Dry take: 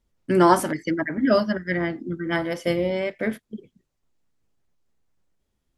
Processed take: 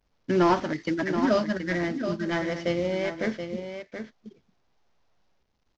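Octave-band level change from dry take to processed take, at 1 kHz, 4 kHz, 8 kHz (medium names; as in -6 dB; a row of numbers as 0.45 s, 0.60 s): -5.0 dB, -2.0 dB, -9.0 dB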